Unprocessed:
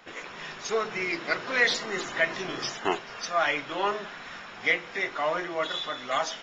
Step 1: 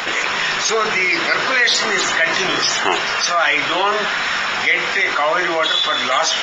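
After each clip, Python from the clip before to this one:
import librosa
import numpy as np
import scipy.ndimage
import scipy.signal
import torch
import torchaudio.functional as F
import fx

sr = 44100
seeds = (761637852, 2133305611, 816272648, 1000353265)

y = fx.tilt_shelf(x, sr, db=-5.5, hz=660.0)
y = fx.env_flatten(y, sr, amount_pct=70)
y = F.gain(torch.from_numpy(y), 2.0).numpy()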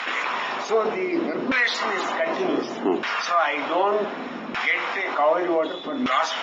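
y = fx.graphic_eq_15(x, sr, hz=(100, 250, 1600), db=(-3, 12, -6))
y = fx.filter_lfo_bandpass(y, sr, shape='saw_down', hz=0.66, low_hz=260.0, high_hz=1600.0, q=1.2)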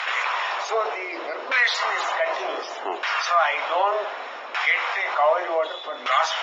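y = scipy.signal.sosfilt(scipy.signal.butter(4, 550.0, 'highpass', fs=sr, output='sos'), x)
y = F.gain(torch.from_numpy(y), 1.5).numpy()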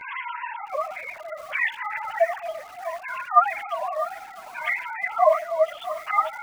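y = fx.sine_speech(x, sr)
y = fx.chorus_voices(y, sr, voices=2, hz=0.86, base_ms=11, depth_ms=3.8, mix_pct=70)
y = fx.echo_crushed(y, sr, ms=649, feedback_pct=55, bits=6, wet_db=-13.5)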